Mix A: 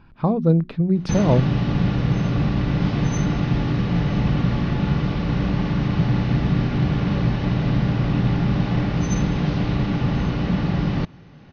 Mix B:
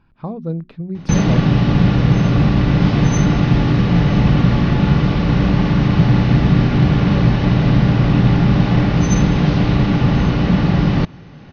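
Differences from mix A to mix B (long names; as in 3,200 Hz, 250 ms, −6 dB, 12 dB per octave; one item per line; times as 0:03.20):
speech −7.0 dB
background +7.0 dB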